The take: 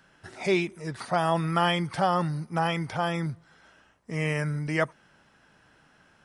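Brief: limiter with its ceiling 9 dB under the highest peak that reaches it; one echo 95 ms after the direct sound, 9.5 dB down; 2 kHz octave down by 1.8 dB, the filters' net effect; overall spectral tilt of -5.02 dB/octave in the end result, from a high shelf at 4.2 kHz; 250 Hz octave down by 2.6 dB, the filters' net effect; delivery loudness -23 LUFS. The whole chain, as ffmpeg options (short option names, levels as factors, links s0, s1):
-af "equalizer=f=250:t=o:g=-5.5,equalizer=f=2000:t=o:g=-4,highshelf=f=4200:g=8.5,alimiter=limit=0.0944:level=0:latency=1,aecho=1:1:95:0.335,volume=2.82"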